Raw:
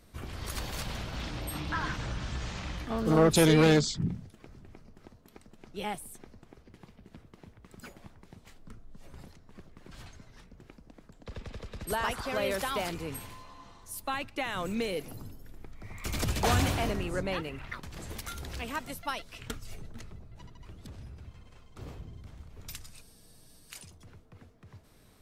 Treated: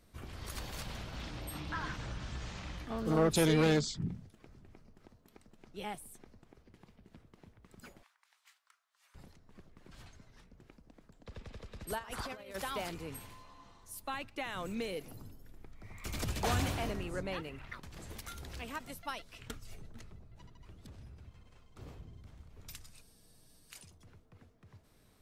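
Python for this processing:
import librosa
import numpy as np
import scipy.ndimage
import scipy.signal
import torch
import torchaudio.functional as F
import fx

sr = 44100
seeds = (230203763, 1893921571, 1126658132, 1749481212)

y = fx.highpass(x, sr, hz=1100.0, slope=24, at=(8.03, 9.15))
y = fx.over_compress(y, sr, threshold_db=-36.0, ratio=-0.5, at=(11.98, 12.54), fade=0.02)
y = fx.end_taper(y, sr, db_per_s=410.0)
y = y * librosa.db_to_amplitude(-6.0)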